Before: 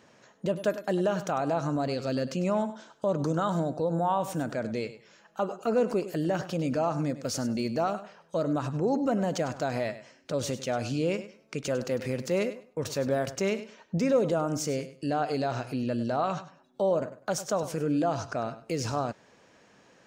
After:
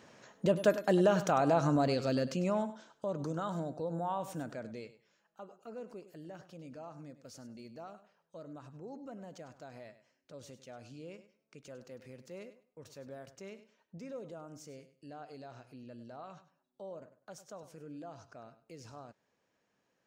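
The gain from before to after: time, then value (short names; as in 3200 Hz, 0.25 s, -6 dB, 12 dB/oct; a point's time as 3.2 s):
1.8 s +0.5 dB
3.1 s -9 dB
4.4 s -9 dB
5.46 s -20 dB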